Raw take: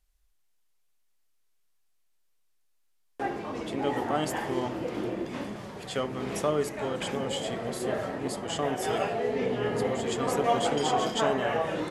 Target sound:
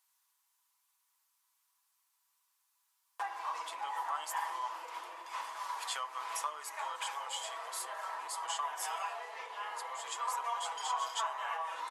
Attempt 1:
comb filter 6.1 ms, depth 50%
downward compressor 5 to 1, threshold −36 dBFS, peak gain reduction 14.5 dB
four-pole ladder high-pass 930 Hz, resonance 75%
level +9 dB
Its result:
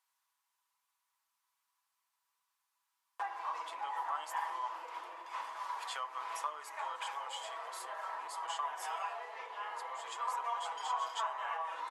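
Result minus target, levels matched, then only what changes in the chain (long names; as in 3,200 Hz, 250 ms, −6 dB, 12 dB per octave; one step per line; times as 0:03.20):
8,000 Hz band −7.0 dB
add after four-pole ladder high-pass: high-shelf EQ 4,200 Hz +10.5 dB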